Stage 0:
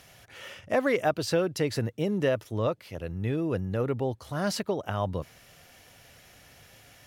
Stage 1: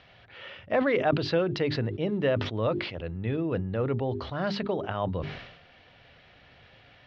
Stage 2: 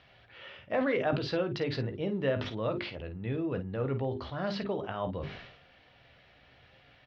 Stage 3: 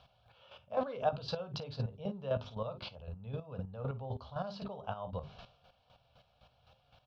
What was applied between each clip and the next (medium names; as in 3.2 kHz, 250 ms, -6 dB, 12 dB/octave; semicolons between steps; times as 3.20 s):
steep low-pass 4.1 kHz 36 dB/octave; hum notches 50/100/150/200/250/300/350/400 Hz; decay stretcher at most 63 dB/s
early reflections 15 ms -9.5 dB, 51 ms -11 dB; trim -5 dB
static phaser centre 800 Hz, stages 4; square tremolo 3.9 Hz, depth 65%, duty 25%; trim +2 dB